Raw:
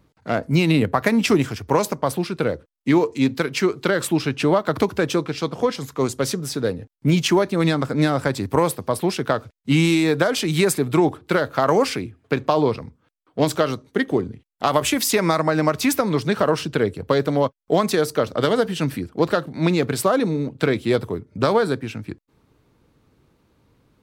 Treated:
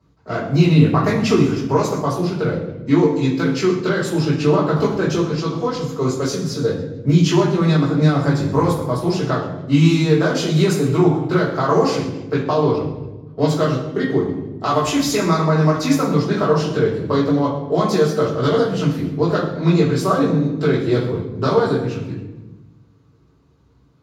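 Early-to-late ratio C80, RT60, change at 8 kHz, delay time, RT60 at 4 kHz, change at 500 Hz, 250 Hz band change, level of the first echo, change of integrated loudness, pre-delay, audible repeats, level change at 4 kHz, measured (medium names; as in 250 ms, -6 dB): 7.0 dB, 1.2 s, -2.5 dB, no echo, 0.80 s, +2.0 dB, +3.5 dB, no echo, +3.0 dB, 3 ms, no echo, -0.5 dB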